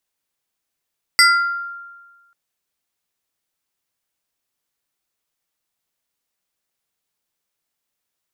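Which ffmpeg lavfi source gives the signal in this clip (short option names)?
-f lavfi -i "aevalsrc='0.473*pow(10,-3*t/1.37)*sin(2*PI*1390*t+1.9*pow(10,-3*t/0.7)*sin(2*PI*2.45*1390*t))':d=1.14:s=44100"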